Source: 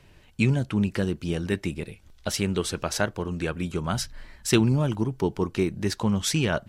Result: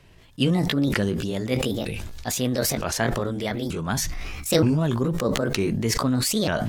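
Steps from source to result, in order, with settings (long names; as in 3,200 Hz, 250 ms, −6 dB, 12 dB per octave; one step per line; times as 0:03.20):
pitch shifter swept by a sawtooth +6.5 semitones, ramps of 925 ms
level that may fall only so fast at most 22 dB per second
level +1 dB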